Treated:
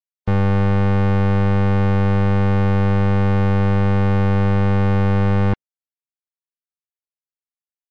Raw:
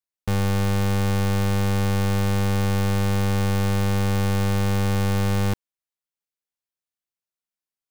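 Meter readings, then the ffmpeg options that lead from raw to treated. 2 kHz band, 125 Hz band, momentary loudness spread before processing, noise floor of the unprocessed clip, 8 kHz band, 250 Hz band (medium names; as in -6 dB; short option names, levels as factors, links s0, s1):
+3.0 dB, +5.5 dB, 1 LU, under -85 dBFS, under -15 dB, +5.5 dB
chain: -filter_complex "[0:a]afftdn=nr=25:nf=-38,acrossover=split=2600[s0][s1];[s1]acompressor=threshold=0.00316:ratio=4:attack=1:release=60[s2];[s0][s2]amix=inputs=2:normalize=0,volume=1.88"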